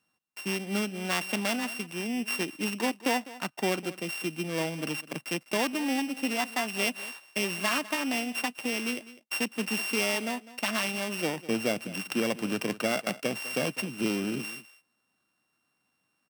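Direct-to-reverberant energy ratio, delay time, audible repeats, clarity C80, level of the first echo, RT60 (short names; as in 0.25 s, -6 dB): none, 0.202 s, 1, none, -17.5 dB, none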